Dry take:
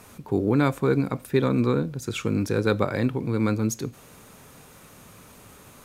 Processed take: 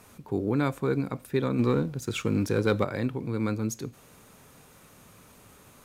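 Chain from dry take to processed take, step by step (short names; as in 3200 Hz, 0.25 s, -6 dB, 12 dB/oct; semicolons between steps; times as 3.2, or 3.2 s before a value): 1.59–2.84 sample leveller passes 1; gain -5 dB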